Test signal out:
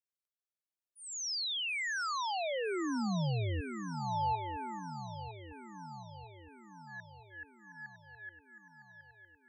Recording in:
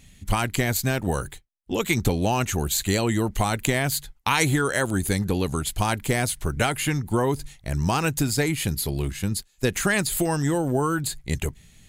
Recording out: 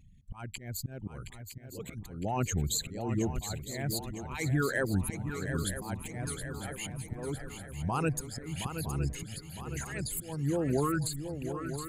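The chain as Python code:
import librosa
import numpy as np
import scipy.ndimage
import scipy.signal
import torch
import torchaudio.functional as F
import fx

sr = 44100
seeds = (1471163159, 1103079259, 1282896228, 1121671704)

p1 = fx.envelope_sharpen(x, sr, power=2.0)
p2 = fx.peak_eq(p1, sr, hz=150.0, db=4.0, octaves=1.2)
p3 = fx.auto_swell(p2, sr, attack_ms=367.0)
p4 = p3 + fx.echo_swing(p3, sr, ms=959, ratio=3, feedback_pct=55, wet_db=-9, dry=0)
y = p4 * librosa.db_to_amplitude(-7.0)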